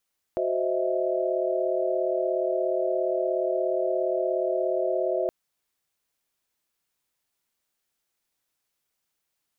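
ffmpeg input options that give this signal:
ffmpeg -f lavfi -i "aevalsrc='0.0376*(sin(2*PI*369.99*t)+sin(2*PI*523.25*t)+sin(2*PI*622.25*t)+sin(2*PI*659.26*t))':duration=4.92:sample_rate=44100" out.wav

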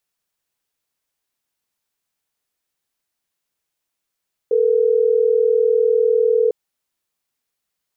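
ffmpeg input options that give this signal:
ffmpeg -f lavfi -i "aevalsrc='0.168*(sin(2*PI*440*t)+sin(2*PI*480*t))*clip(min(mod(t,6),2-mod(t,6))/0.005,0,1)':duration=3.12:sample_rate=44100" out.wav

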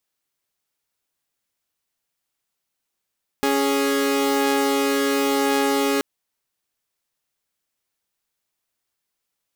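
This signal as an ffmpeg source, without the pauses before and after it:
ffmpeg -f lavfi -i "aevalsrc='0.119*((2*mod(277.18*t,1)-1)+(2*mod(415.3*t,1)-1))':duration=2.58:sample_rate=44100" out.wav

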